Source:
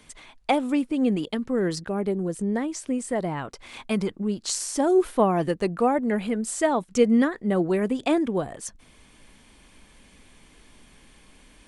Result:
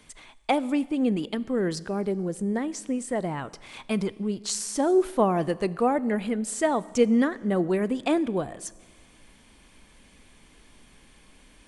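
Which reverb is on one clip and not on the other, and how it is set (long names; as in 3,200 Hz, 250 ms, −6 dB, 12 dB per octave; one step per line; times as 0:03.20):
four-comb reverb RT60 1.6 s, combs from 29 ms, DRR 19 dB
level −1.5 dB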